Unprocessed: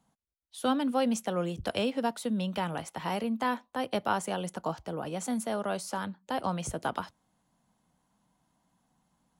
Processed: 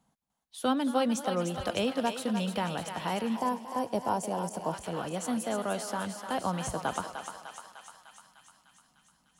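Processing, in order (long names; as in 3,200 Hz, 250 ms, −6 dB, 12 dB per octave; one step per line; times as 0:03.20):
feedback echo with a high-pass in the loop 301 ms, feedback 71%, high-pass 750 Hz, level −6 dB
gain on a spectral selection 0:03.36–0:04.73, 1,100–4,500 Hz −11 dB
feedback echo with a swinging delay time 221 ms, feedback 44%, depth 167 cents, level −17 dB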